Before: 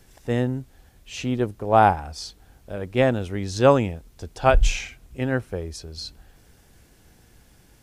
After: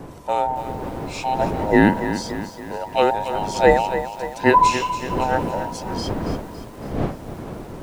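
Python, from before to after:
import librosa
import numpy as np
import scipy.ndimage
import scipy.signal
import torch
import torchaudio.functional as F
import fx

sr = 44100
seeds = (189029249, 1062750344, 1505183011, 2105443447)

y = fx.band_invert(x, sr, width_hz=1000)
y = fx.dmg_wind(y, sr, seeds[0], corner_hz=440.0, level_db=-32.0)
y = fx.echo_crushed(y, sr, ms=281, feedback_pct=55, bits=7, wet_db=-10.5)
y = y * 10.0 ** (1.5 / 20.0)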